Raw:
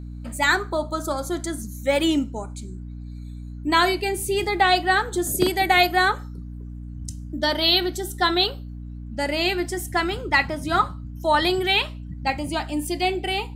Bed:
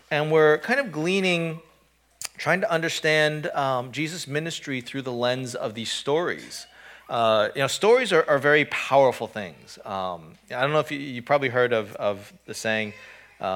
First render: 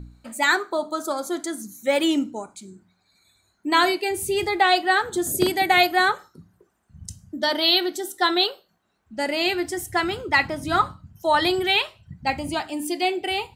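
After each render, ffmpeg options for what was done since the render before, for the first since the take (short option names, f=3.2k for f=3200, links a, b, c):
-af "bandreject=f=60:t=h:w=4,bandreject=f=120:t=h:w=4,bandreject=f=180:t=h:w=4,bandreject=f=240:t=h:w=4,bandreject=f=300:t=h:w=4"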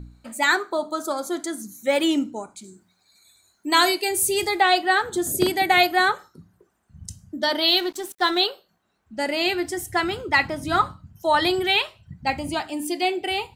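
-filter_complex "[0:a]asettb=1/sr,asplit=3[a][b][c];[a]atrim=end=2.644[d];[b]atrim=start=2.64:end=4.6,asetpts=PTS-STARTPTS,afade=t=in:d=0.004:c=qsin,afade=t=out:st=1.956:d=0.004:c=qsin,bass=f=250:g=-5,treble=f=4k:g=9[e];[c]atrim=start=4.596[f];[d][e]acrossfade=d=0.004:c1=hsin:c2=qsin[g];[g][f]acrossfade=d=0.004:c1=qsin:c2=hsin,asettb=1/sr,asplit=3[h][i][j];[h]atrim=end=7.684[k];[i]atrim=start=7.68:end=8.41,asetpts=PTS-STARTPTS,afade=t=in:d=0.004:c=qsin,afade=t=out:st=0.726:d=0.004:c=qsin,aeval=exprs='sgn(val(0))*max(abs(val(0))-0.00891,0)':c=same[l];[j]atrim=start=8.406[m];[k][l]acrossfade=d=0.004:c1=hsin:c2=qsin[n];[n][m]acrossfade=d=0.004:c1=qsin:c2=hsin"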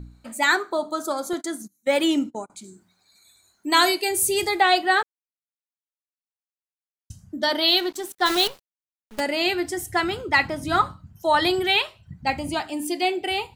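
-filter_complex "[0:a]asettb=1/sr,asplit=3[a][b][c];[a]atrim=end=1.334[d];[b]atrim=start=1.33:end=2.5,asetpts=PTS-STARTPTS,afade=t=in:d=0.004:c=qsin,afade=t=out:st=1.166:d=0.004:c=qsin,agate=range=-27dB:threshold=-36dB:ratio=16:release=100:detection=peak[e];[c]atrim=start=2.496[f];[d][e]acrossfade=d=0.004:c1=hsin:c2=qsin[g];[g][f]acrossfade=d=0.004:c1=qsin:c2=hsin,asplit=3[h][i][j];[h]afade=t=out:st=8.25:d=0.02[k];[i]acrusher=bits=5:dc=4:mix=0:aa=0.000001,afade=t=in:st=8.25:d=0.02,afade=t=out:st=9.19:d=0.02[l];[j]afade=t=in:st=9.19:d=0.02[m];[k][l][m]amix=inputs=3:normalize=0,asplit=3[n][o][p];[n]atrim=end=5.03,asetpts=PTS-STARTPTS,afade=t=out:st=5.026:d=0.004:c=hsin[q];[o]atrim=start=5.03:end=7.1,asetpts=PTS-STARTPTS,volume=0[r];[p]atrim=start=7.1,asetpts=PTS-STARTPTS,afade=t=in:d=0.004:c=hsin[s];[q][r][s]concat=n=3:v=0:a=1"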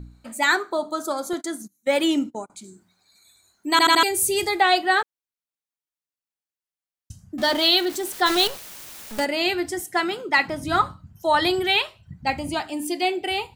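-filter_complex "[0:a]asettb=1/sr,asplit=3[a][b][c];[a]atrim=end=7.384[d];[b]atrim=start=7.38:end=9.25,asetpts=PTS-STARTPTS,afade=t=in:d=0.004:c=qsin,afade=t=out:st=1.866:d=0.004:c=qsin,aeval=exprs='val(0)+0.5*0.0376*sgn(val(0))':c=same[e];[c]atrim=start=9.246[f];[d][e]acrossfade=d=0.004:c1=hsin:c2=qsin[g];[g][f]acrossfade=d=0.004:c1=qsin:c2=hsin,asettb=1/sr,asplit=3[h][i][j];[h]atrim=end=9.804[k];[i]atrim=start=9.8:end=10.48,asetpts=PTS-STARTPTS,afade=t=in:d=0.004:c=qsin,afade=t=out:st=0.676:d=0.004:c=qsin,highpass=f=190:w=0.5412,highpass=f=190:w=1.3066[l];[j]atrim=start=10.476[m];[k][l]acrossfade=d=0.004:c1=hsin:c2=qsin[n];[n][m]acrossfade=d=0.004:c1=qsin:c2=hsin,asplit=5[o][p][q][r][s];[o]atrim=end=3.792[t];[p]atrim=start=3.708:end=3.792[u];[q]atrim=start=3.708:end=3.792[v];[r]atrim=start=3.708:end=3.792[w];[s]atrim=start=4.028[x];[t][u]acrossfade=d=0.004:c1=hsin:c2=hsin[y];[y][v]acrossfade=d=0.004:c1=hsin:c2=hsin[z];[z][w]acrossfade=d=0.004:c1=hsin:c2=hsin[aa];[aa][x]acrossfade=d=0.004:c1=hsin:c2=hsin"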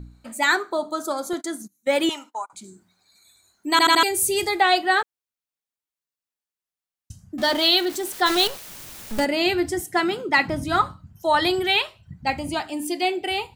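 -filter_complex "[0:a]asettb=1/sr,asplit=3[a][b][c];[a]atrim=end=2.094[d];[b]atrim=start=2.09:end=2.53,asetpts=PTS-STARTPTS,afade=t=in:d=0.004:c=qsin,afade=t=out:st=0.436:d=0.004:c=qsin,highpass=f=1k:t=q:w=3.3[e];[c]atrim=start=2.526[f];[d][e]acrossfade=d=0.004:c1=hsin:c2=qsin[g];[g][f]acrossfade=d=0.004:c1=qsin:c2=hsin,asettb=1/sr,asplit=3[h][i][j];[h]atrim=end=8.684[k];[i]atrim=start=8.68:end=10.64,asetpts=PTS-STARTPTS,afade=t=in:d=0.004:c=qsin,afade=t=out:st=1.956:d=0.004:c=qsin,lowshelf=f=250:g=10[l];[j]atrim=start=10.636[m];[k][l]acrossfade=d=0.004:c1=hsin:c2=qsin[n];[n][m]acrossfade=d=0.004:c1=qsin:c2=hsin"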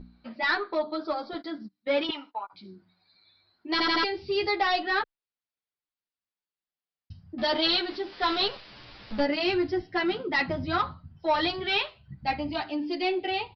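-filter_complex "[0:a]aresample=11025,asoftclip=type=tanh:threshold=-16.5dB,aresample=44100,asplit=2[a][b];[b]adelay=9.1,afreqshift=-0.28[c];[a][c]amix=inputs=2:normalize=1"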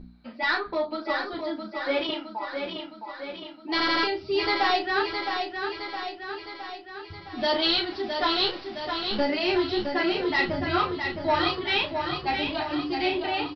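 -filter_complex "[0:a]asplit=2[a][b];[b]adelay=33,volume=-6dB[c];[a][c]amix=inputs=2:normalize=0,aecho=1:1:664|1328|1992|2656|3320|3984|4648|5312:0.501|0.296|0.174|0.103|0.0607|0.0358|0.0211|0.0125"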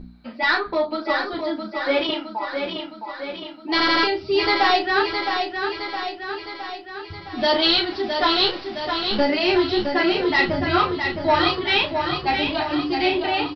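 -af "volume=5.5dB"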